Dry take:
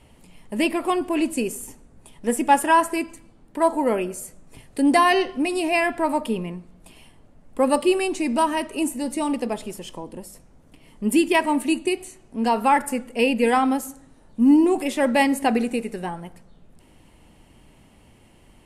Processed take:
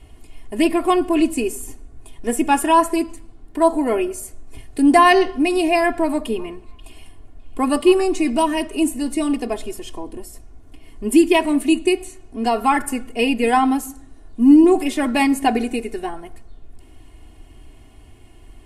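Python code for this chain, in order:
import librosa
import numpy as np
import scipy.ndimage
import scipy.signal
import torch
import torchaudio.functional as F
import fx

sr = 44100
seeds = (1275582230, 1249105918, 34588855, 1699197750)

y = fx.low_shelf(x, sr, hz=120.0, db=9.0)
y = y + 0.84 * np.pad(y, (int(2.8 * sr / 1000.0), 0))[:len(y)]
y = fx.echo_stepped(y, sr, ms=268, hz=1200.0, octaves=1.4, feedback_pct=70, wet_db=-11.5, at=(6.12, 8.3))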